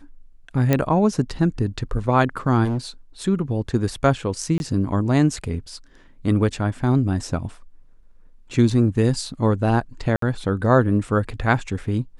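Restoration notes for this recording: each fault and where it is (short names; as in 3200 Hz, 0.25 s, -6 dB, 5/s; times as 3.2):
0.73 pop -5 dBFS
2.64–2.78 clipped -20 dBFS
4.58–4.6 gap 21 ms
10.16–10.22 gap 63 ms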